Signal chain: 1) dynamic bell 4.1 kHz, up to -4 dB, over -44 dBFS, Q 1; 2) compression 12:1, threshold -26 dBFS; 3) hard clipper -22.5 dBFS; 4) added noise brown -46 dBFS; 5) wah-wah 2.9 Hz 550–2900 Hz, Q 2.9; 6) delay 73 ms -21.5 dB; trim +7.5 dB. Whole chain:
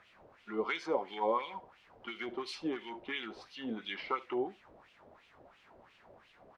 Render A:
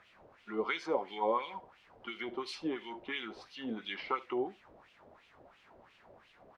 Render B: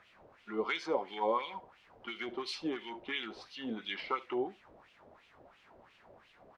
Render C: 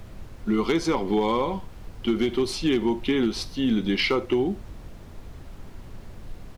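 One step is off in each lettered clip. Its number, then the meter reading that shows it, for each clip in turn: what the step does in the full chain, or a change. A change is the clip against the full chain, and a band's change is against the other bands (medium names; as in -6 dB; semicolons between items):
3, distortion -25 dB; 1, 4 kHz band +2.5 dB; 5, 125 Hz band +12.0 dB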